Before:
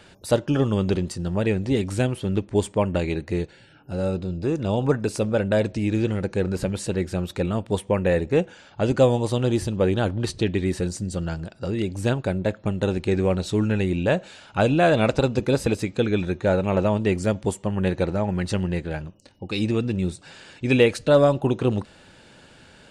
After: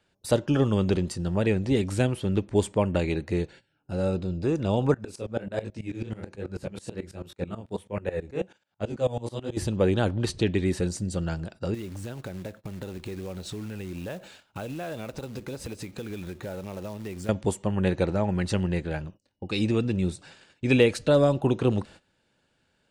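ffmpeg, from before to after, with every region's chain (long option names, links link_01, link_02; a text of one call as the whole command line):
ffmpeg -i in.wav -filter_complex "[0:a]asettb=1/sr,asplit=3[link_01][link_02][link_03];[link_01]atrim=end=4.944[link_04];[link_02]atrim=start=4.94:end=9.57,asetpts=PTS-STARTPTS,afade=type=in:duration=0.004:curve=qsin,afade=type=out:start_time=4.626:duration=0.004:curve=qsin,highpass=58,flanger=delay=19:depth=7.6:speed=1.3,aeval=exprs='val(0)*pow(10,-19*if(lt(mod(-9.2*n/s,1),2*abs(-9.2)/1000),1-mod(-9.2*n/s,1)/(2*abs(-9.2)/1000),(mod(-9.2*n/s,1)-2*abs(-9.2)/1000)/(1-2*abs(-9.2)/1000))/20)':channel_layout=same[link_05];[link_03]atrim=start=9.566[link_06];[link_04][link_05]acrossfade=duration=0.004:curve1=hsin:curve2=qsin[link_07];[link_07][link_06]acrossfade=duration=0.004:curve1=qsin:curve2=hsin,asettb=1/sr,asplit=3[link_08][link_09][link_10];[link_08]atrim=end=11.744[link_11];[link_09]atrim=start=11.74:end=17.29,asetpts=PTS-STARTPTS,afade=type=in:duration=0.004:curve=qsin,afade=type=out:start_time=5.546:duration=0.004:curve=qsin,acompressor=threshold=-32dB:ratio=5:attack=3.2:release=140:knee=1:detection=peak,acrusher=bits=4:mode=log:mix=0:aa=0.000001[link_12];[link_10]atrim=start=17.286[link_13];[link_11][link_12]acrossfade=duration=0.004:curve1=hsin:curve2=qsin[link_14];[link_14][link_13]acrossfade=duration=0.004:curve1=qsin:curve2=hsin,agate=range=-19dB:threshold=-43dB:ratio=16:detection=peak,acrossover=split=480|3000[link_15][link_16][link_17];[link_16]acompressor=threshold=-21dB:ratio=6[link_18];[link_15][link_18][link_17]amix=inputs=3:normalize=0,volume=-1.5dB" out.wav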